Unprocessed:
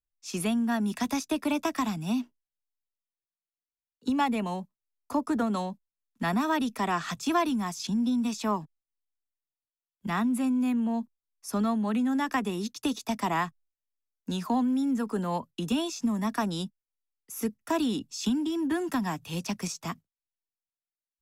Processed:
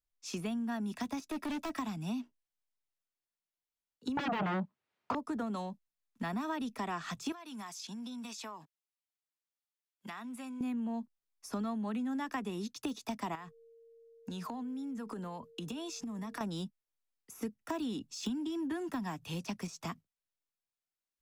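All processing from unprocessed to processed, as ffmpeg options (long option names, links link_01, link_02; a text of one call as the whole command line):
ffmpeg -i in.wav -filter_complex "[0:a]asettb=1/sr,asplit=3[link_01][link_02][link_03];[link_01]atrim=end=1.194[link_04];[link_02]atrim=start=1.19:end=1.79,asetpts=PTS-STARTPTS,afade=type=in:duration=0.004:curve=qsin,afade=type=out:start_time=0.596:duration=0.004:curve=qsin,aecho=1:1:3.1:0.51,atrim=end_sample=26460,asoftclip=type=hard:threshold=-29.5dB[link_05];[link_03]atrim=start=1.786[link_06];[link_04][link_05]acrossfade=duration=0.004:curve1=hsin:curve2=qsin[link_07];[link_07][link_06]acrossfade=duration=0.004:curve1=qsin:curve2=hsin,asettb=1/sr,asplit=3[link_08][link_09][link_10];[link_08]atrim=end=4.174[link_11];[link_09]atrim=start=4.17:end=5.15,asetpts=PTS-STARTPTS,afade=type=in:duration=0.004:curve=qsin,afade=type=out:start_time=0.976:duration=0.004:curve=qsin,aeval=exprs='0.168*sin(PI/2*6.31*val(0)/0.168)':channel_layout=same,highpass=110,lowpass=2700[link_12];[link_10]atrim=start=5.146[link_13];[link_11][link_12]acrossfade=duration=0.004:curve1=hsin:curve2=qsin[link_14];[link_14][link_13]acrossfade=duration=0.004:curve1=qsin:curve2=hsin,asettb=1/sr,asplit=3[link_15][link_16][link_17];[link_15]atrim=end=7.324[link_18];[link_16]atrim=start=7.32:end=10.61,asetpts=PTS-STARTPTS,afade=type=in:duration=0.004:curve=qsin,afade=type=out:start_time=3.286:duration=0.004:curve=qsin,highpass=frequency=930:poles=1,acompressor=threshold=-39dB:ratio=16:attack=3.2:release=140:knee=1:detection=peak[link_19];[link_17]atrim=start=10.606[link_20];[link_18][link_19]acrossfade=duration=0.004:curve1=hsin:curve2=qsin[link_21];[link_21][link_20]acrossfade=duration=0.004:curve1=qsin:curve2=hsin,asettb=1/sr,asplit=3[link_22][link_23][link_24];[link_22]atrim=end=13.354[link_25];[link_23]atrim=start=13.35:end=16.41,asetpts=PTS-STARTPTS,afade=type=in:duration=0.004:curve=qsin,afade=type=out:start_time=3.056:duration=0.004:curve=qsin,acompressor=threshold=-35dB:ratio=12:attack=3.2:release=140:knee=1:detection=peak,aeval=exprs='val(0)+0.00141*sin(2*PI*460*n/s)':channel_layout=same[link_26];[link_24]atrim=start=16.406[link_27];[link_25][link_26]acrossfade=duration=0.004:curve1=hsin:curve2=qsin[link_28];[link_28][link_27]acrossfade=duration=0.004:curve1=qsin:curve2=hsin,deesser=0.9,highshelf=frequency=9300:gain=-5.5,acompressor=threshold=-38dB:ratio=2.5" out.wav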